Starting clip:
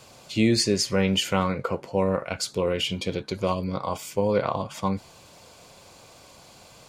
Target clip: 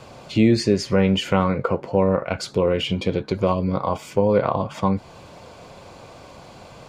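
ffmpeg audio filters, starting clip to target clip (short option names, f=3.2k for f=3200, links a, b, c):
-filter_complex "[0:a]lowpass=f=1.5k:p=1,asplit=2[a][b];[b]acompressor=threshold=-32dB:ratio=6,volume=2dB[c];[a][c]amix=inputs=2:normalize=0,volume=3dB"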